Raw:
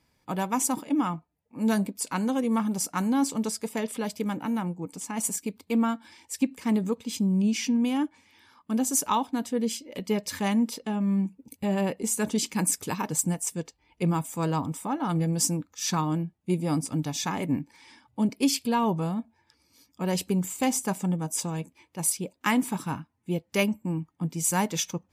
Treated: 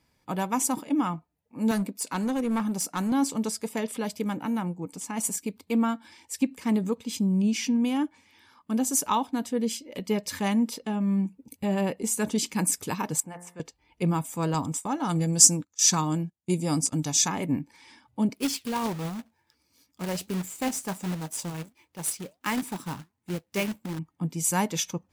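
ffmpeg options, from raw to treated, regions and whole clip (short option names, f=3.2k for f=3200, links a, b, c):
-filter_complex "[0:a]asettb=1/sr,asplit=3[a][b][c];[a]atrim=end=1.714[d];[b]atrim=start=1.71:end=3.12,asetpts=PTS-STARTPTS,afade=t=in:d=0.004:c=qsin,afade=t=out:st=1.406:d=0.004:c=qsin,highpass=130,bandreject=f=3.2k:w=18,asoftclip=type=hard:threshold=-22.5dB[e];[c]atrim=start=3.116[f];[d][e]acrossfade=d=0.004:c1=hsin:c2=qsin[g];[g][f]acrossfade=d=0.004:c1=qsin:c2=hsin,asettb=1/sr,asplit=3[h][i][j];[h]atrim=end=13.204[k];[i]atrim=start=13.2:end=13.6,asetpts=PTS-STARTPTS,afade=t=in:d=0.004:c=qsin,afade=t=out:st=0.396:d=0.004:c=qsin,acrossover=split=520 2400:gain=0.2 1 0.141[l][m][n];[l][m][n]amix=inputs=3:normalize=0,bandreject=f=58.72:t=h:w=4,bandreject=f=117.44:t=h:w=4,bandreject=f=176.16:t=h:w=4,bandreject=f=234.88:t=h:w=4,bandreject=f=293.6:t=h:w=4,bandreject=f=352.32:t=h:w=4,bandreject=f=411.04:t=h:w=4,bandreject=f=469.76:t=h:w=4,bandreject=f=528.48:t=h:w=4,bandreject=f=587.2:t=h:w=4,bandreject=f=645.92:t=h:w=4,bandreject=f=704.64:t=h:w=4,bandreject=f=763.36:t=h:w=4,bandreject=f=822.08:t=h:w=4,bandreject=f=880.8:t=h:w=4,bandreject=f=939.52:t=h:w=4,bandreject=f=998.24:t=h:w=4,bandreject=f=1.05696k:t=h:w=4,bandreject=f=1.11568k:t=h:w=4,bandreject=f=1.1744k:t=h:w=4,bandreject=f=1.23312k:t=h:w=4,bandreject=f=1.29184k:t=h:w=4,bandreject=f=1.35056k:t=h:w=4,bandreject=f=1.40928k:t=h:w=4,bandreject=f=1.468k:t=h:w=4,bandreject=f=1.52672k:t=h:w=4,bandreject=f=1.58544k:t=h:w=4,bandreject=f=1.64416k:t=h:w=4,bandreject=f=1.70288k:t=h:w=4,bandreject=f=1.7616k:t=h:w=4,bandreject=f=1.82032k:t=h:w=4,bandreject=f=1.87904k:t=h:w=4,bandreject=f=1.93776k:t=h:w=4,bandreject=f=1.99648k:t=h:w=4,bandreject=f=2.0552k:t=h:w=4,bandreject=f=2.11392k:t=h:w=4[o];[j]atrim=start=13.596[p];[k][o]acrossfade=d=0.004:c1=hsin:c2=qsin[q];[q][p]acrossfade=d=0.004:c1=qsin:c2=hsin,asettb=1/sr,asplit=3[r][s][t];[r]atrim=end=14.544[u];[s]atrim=start=14.54:end=17.28,asetpts=PTS-STARTPTS,afade=t=in:d=0.004:c=qsin,afade=t=out:st=2.736:d=0.004:c=qsin,agate=range=-17dB:threshold=-40dB:ratio=16:release=100:detection=peak,equalizer=f=6.9k:w=1.1:g=13[v];[t]atrim=start=17.276[w];[u][v]acrossfade=d=0.004:c1=hsin:c2=qsin[x];[x][w]acrossfade=d=0.004:c1=qsin:c2=hsin,asettb=1/sr,asplit=3[y][z][aa];[y]atrim=end=18.344[ab];[z]atrim=start=18.34:end=23.99,asetpts=PTS-STARTPTS,afade=t=in:d=0.004:c=qsin,afade=t=out:st=5.646:d=0.004:c=qsin,flanger=delay=0.1:depth=7.5:regen=81:speed=1.4:shape=triangular,acrusher=bits=2:mode=log:mix=0:aa=0.000001[ac];[aa]atrim=start=23.986[ad];[ab][ac]acrossfade=d=0.004:c1=hsin:c2=qsin[ae];[ae][ad]acrossfade=d=0.004:c1=qsin:c2=hsin"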